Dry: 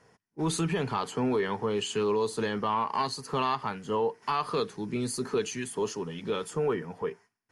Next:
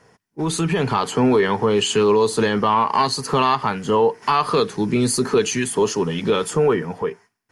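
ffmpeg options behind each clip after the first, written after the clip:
-filter_complex "[0:a]asplit=2[a][b];[b]alimiter=level_in=2.5dB:limit=-24dB:level=0:latency=1:release=198,volume=-2.5dB,volume=2.5dB[c];[a][c]amix=inputs=2:normalize=0,dynaudnorm=f=160:g=9:m=7dB"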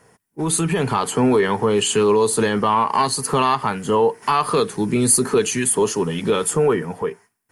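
-af "highshelf=f=7.2k:t=q:w=1.5:g=8"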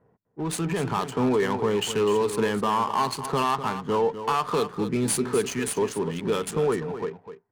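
-filter_complex "[0:a]adynamicsmooth=sensitivity=4:basefreq=750,asplit=2[a][b];[b]aecho=0:1:251:0.282[c];[a][c]amix=inputs=2:normalize=0,volume=-6.5dB"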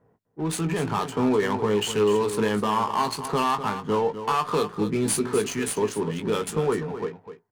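-filter_complex "[0:a]asplit=2[a][b];[b]adelay=19,volume=-8.5dB[c];[a][c]amix=inputs=2:normalize=0"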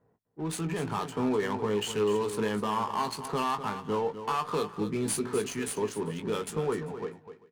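-af "aecho=1:1:393:0.0708,volume=-6dB"

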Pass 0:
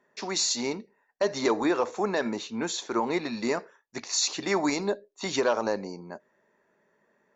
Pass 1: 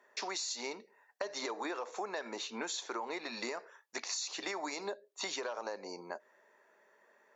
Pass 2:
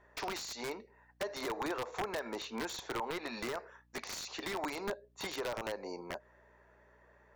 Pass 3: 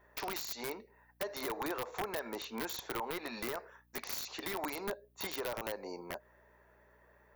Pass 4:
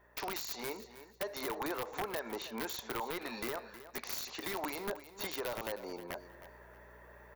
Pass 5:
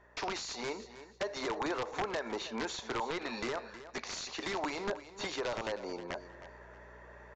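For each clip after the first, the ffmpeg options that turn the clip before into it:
-af "highpass=500,alimiter=limit=-20.5dB:level=0:latency=1:release=148,acompressor=threshold=-41dB:ratio=5,volume=4dB"
-af "aeval=exprs='val(0)+0.000282*(sin(2*PI*60*n/s)+sin(2*PI*2*60*n/s)/2+sin(2*PI*3*60*n/s)/3+sin(2*PI*4*60*n/s)/4+sin(2*PI*5*60*n/s)/5)':c=same,aeval=exprs='(mod(31.6*val(0)+1,2)-1)/31.6':c=same,highshelf=f=3.9k:g=-12,volume=3dB"
-af "aexciter=amount=4.2:drive=4.7:freq=10k,volume=-1dB"
-af "areverse,acompressor=mode=upward:threshold=-46dB:ratio=2.5,areverse,aecho=1:1:315|630|945:0.2|0.0459|0.0106"
-af "aresample=16000,aresample=44100,volume=3dB"

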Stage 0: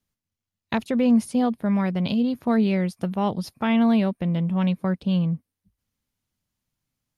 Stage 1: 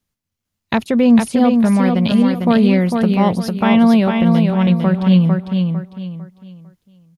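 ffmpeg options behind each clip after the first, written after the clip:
-filter_complex "[0:a]dynaudnorm=f=140:g=5:m=3.5dB,asplit=2[a][b];[b]aecho=0:1:451|902|1353|1804:0.596|0.185|0.0572|0.0177[c];[a][c]amix=inputs=2:normalize=0,volume=4dB"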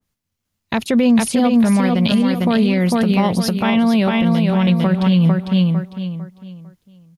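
-af "alimiter=limit=-10dB:level=0:latency=1:release=89,adynamicequalizer=threshold=0.0141:dfrequency=1900:dqfactor=0.7:tfrequency=1900:tqfactor=0.7:attack=5:release=100:ratio=0.375:range=2.5:mode=boostabove:tftype=highshelf,volume=2.5dB"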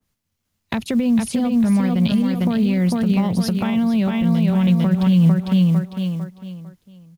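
-filter_complex "[0:a]acrusher=bits=8:mode=log:mix=0:aa=0.000001,acrossover=split=200[a][b];[b]acompressor=threshold=-26dB:ratio=6[c];[a][c]amix=inputs=2:normalize=0,volume=2dB"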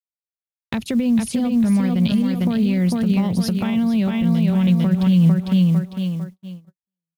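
-af "agate=range=-45dB:threshold=-33dB:ratio=16:detection=peak,equalizer=f=940:t=o:w=1.8:g=-3.5"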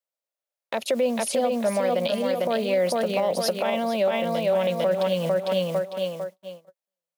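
-af "highpass=f=570:t=q:w=5.6,alimiter=limit=-16.5dB:level=0:latency=1:release=48,volume=2dB"

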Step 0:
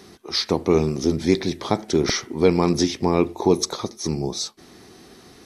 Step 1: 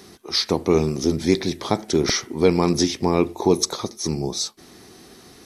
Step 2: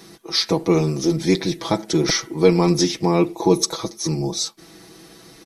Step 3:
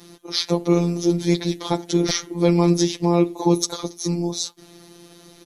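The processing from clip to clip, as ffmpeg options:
-af "highshelf=f=7k:g=6.5"
-af "aecho=1:1:6.1:0.88,volume=-1dB"
-af "afftfilt=real='hypot(re,im)*cos(PI*b)':imag='0':win_size=1024:overlap=0.75,volume=1dB" -ar 48000 -c:a aac -b:a 192k

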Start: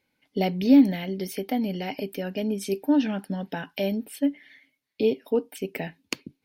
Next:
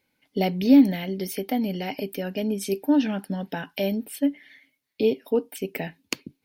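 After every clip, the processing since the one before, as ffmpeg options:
-af "highshelf=f=9.6k:g=5.5,volume=1dB"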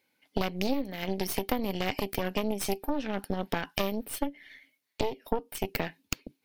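-af "highpass=f=290:p=1,acompressor=threshold=-29dB:ratio=16,aeval=exprs='0.237*(cos(1*acos(clip(val(0)/0.237,-1,1)))-cos(1*PI/2))+0.0841*(cos(6*acos(clip(val(0)/0.237,-1,1)))-cos(6*PI/2))':c=same"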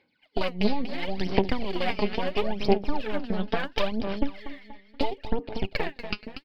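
-filter_complex "[0:a]aresample=11025,aresample=44100,asplit=2[a][b];[b]aecho=0:1:239|478|717|956:0.299|0.119|0.0478|0.0191[c];[a][c]amix=inputs=2:normalize=0,aphaser=in_gain=1:out_gain=1:delay=4.8:decay=0.69:speed=0.73:type=sinusoidal"

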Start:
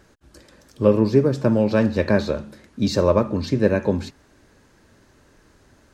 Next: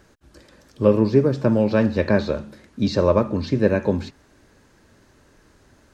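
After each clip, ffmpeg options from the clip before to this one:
-filter_complex "[0:a]acrossover=split=5600[a][b];[b]acompressor=threshold=-57dB:ratio=4:attack=1:release=60[c];[a][c]amix=inputs=2:normalize=0"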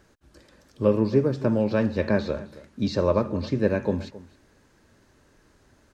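-filter_complex "[0:a]asplit=2[a][b];[b]adelay=268.2,volume=-18dB,highshelf=f=4k:g=-6.04[c];[a][c]amix=inputs=2:normalize=0,volume=-4.5dB"

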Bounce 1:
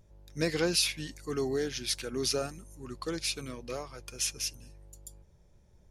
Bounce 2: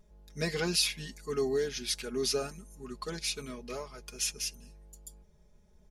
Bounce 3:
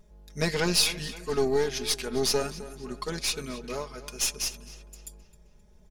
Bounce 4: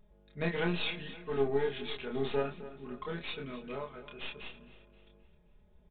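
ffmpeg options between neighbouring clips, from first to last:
-af "aecho=1:1:4.8:0.83,volume=-3dB"
-filter_complex "[0:a]aeval=exprs='0.188*(cos(1*acos(clip(val(0)/0.188,-1,1)))-cos(1*PI/2))+0.00944*(cos(4*acos(clip(val(0)/0.188,-1,1)))-cos(4*PI/2))+0.00944*(cos(8*acos(clip(val(0)/0.188,-1,1)))-cos(8*PI/2))':c=same,asplit=2[a][b];[b]adelay=263,lowpass=f=4.6k:p=1,volume=-15dB,asplit=2[c][d];[d]adelay=263,lowpass=f=4.6k:p=1,volume=0.5,asplit=2[e][f];[f]adelay=263,lowpass=f=4.6k:p=1,volume=0.5,asplit=2[g][h];[h]adelay=263,lowpass=f=4.6k:p=1,volume=0.5,asplit=2[i][j];[j]adelay=263,lowpass=f=4.6k:p=1,volume=0.5[k];[a][c][e][g][i][k]amix=inputs=6:normalize=0,volume=4.5dB"
-filter_complex "[0:a]asplit=2[a][b];[b]adelay=29,volume=-3dB[c];[a][c]amix=inputs=2:normalize=0,aresample=8000,aresample=44100,volume=-7dB"

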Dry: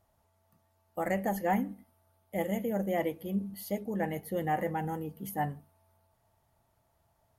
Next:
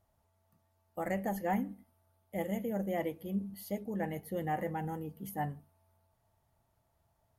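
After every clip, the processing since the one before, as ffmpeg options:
-af "lowshelf=f=210:g=3.5,volume=-4.5dB"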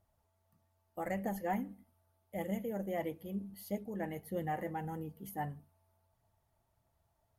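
-af "aphaser=in_gain=1:out_gain=1:delay=3.4:decay=0.26:speed=1.6:type=triangular,volume=-3dB"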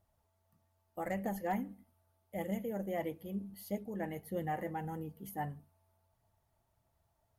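-af "asoftclip=type=hard:threshold=-26.5dB"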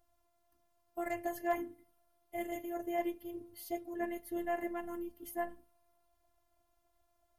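-af "afftfilt=real='hypot(re,im)*cos(PI*b)':imag='0':win_size=512:overlap=0.75,volume=5.5dB"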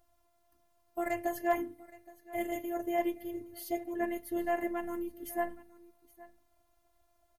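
-af "aecho=1:1:819:0.0944,volume=4dB"

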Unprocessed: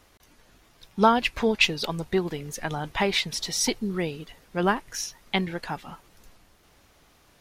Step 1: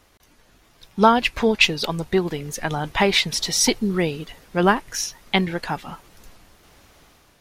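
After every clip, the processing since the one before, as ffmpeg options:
-af "dynaudnorm=f=540:g=3:m=6dB,volume=1dB"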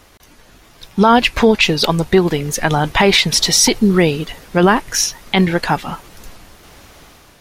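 -af "alimiter=level_in=11dB:limit=-1dB:release=50:level=0:latency=1,volume=-1dB"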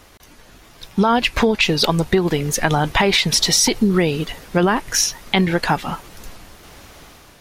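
-af "acompressor=threshold=-12dB:ratio=6"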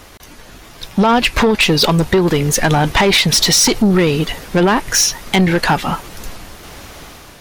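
-af "asoftclip=type=tanh:threshold=-14.5dB,volume=7.5dB"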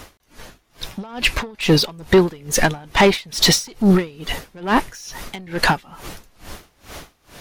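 -af "aeval=exprs='val(0)*pow(10,-28*(0.5-0.5*cos(2*PI*2.3*n/s))/20)':c=same,volume=1.5dB"

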